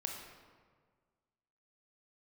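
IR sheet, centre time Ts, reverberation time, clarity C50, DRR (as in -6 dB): 54 ms, 1.7 s, 3.5 dB, 1.0 dB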